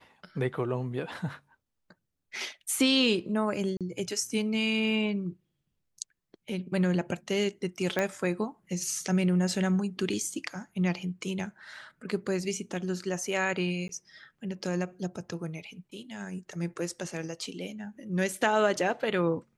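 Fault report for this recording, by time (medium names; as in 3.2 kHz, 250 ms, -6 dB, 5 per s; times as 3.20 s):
3.77–3.81 s: dropout 37 ms
7.99 s: pop -14 dBFS
13.88–13.89 s: dropout 12 ms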